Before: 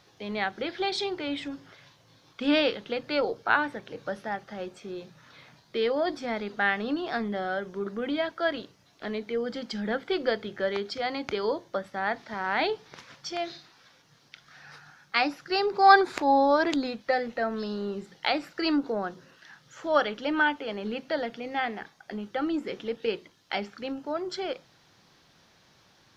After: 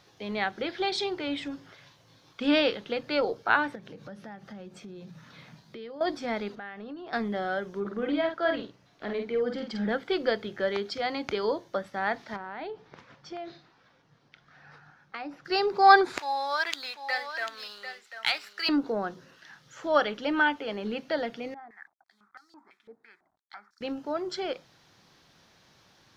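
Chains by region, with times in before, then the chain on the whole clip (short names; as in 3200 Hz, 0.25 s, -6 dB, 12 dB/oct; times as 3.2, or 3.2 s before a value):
3.75–6.01 bell 180 Hz +11 dB 0.88 oct + compressor 4:1, threshold -42 dBFS
6.55–7.13 high shelf 3200 Hz -11.5 dB + compressor 3:1, threshold -41 dBFS
7.8–9.89 high shelf 4300 Hz -10.5 dB + doubler 49 ms -5 dB
12.36–15.45 LPF 1200 Hz 6 dB/oct + compressor, threshold -34 dBFS
16.19–18.69 HPF 1500 Hz + sample leveller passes 1 + echo 0.745 s -10 dB
21.54–23.81 level-crossing sampler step -51 dBFS + fixed phaser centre 1200 Hz, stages 4 + stepped band-pass 6 Hz 480–5200 Hz
whole clip: dry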